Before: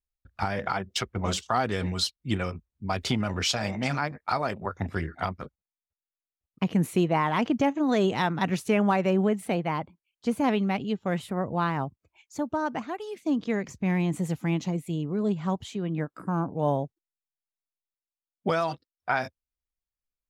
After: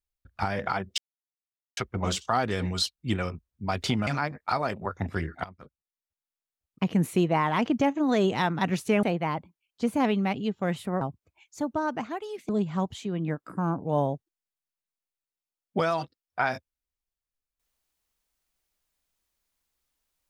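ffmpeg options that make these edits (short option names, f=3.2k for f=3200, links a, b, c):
-filter_complex "[0:a]asplit=7[a][b][c][d][e][f][g];[a]atrim=end=0.98,asetpts=PTS-STARTPTS,afade=t=out:st=0.976:d=0.004:c=hsin,apad=pad_dur=0.79[h];[b]atrim=start=0.98:end=3.282,asetpts=PTS-STARTPTS,afade=t=in:d=0.004:c=hsin[i];[c]atrim=start=3.868:end=5.24,asetpts=PTS-STARTPTS,afade=t=out:st=1.368:d=0.004:c=hsin:silence=0.133352[j];[d]atrim=start=5.24:end=8.832,asetpts=PTS-STARTPTS,afade=t=in:d=1.45:c=qsin:silence=0.133352[k];[e]atrim=start=9.468:end=11.452[l];[f]atrim=start=11.788:end=13.272[m];[g]atrim=start=15.188[n];[h][i]concat=n=2:v=0:a=1[o];[j][k]concat=n=2:v=0:a=1[p];[o][p]acrossfade=d=0.004:c1=hsin:c2=hsin[q];[q][l]acrossfade=d=0.004:c1=hsin:c2=hsin[r];[r][m]acrossfade=d=0.004:c1=hsin:c2=hsin[s];[s][n]acrossfade=d=0.004:c1=hsin:c2=hsin"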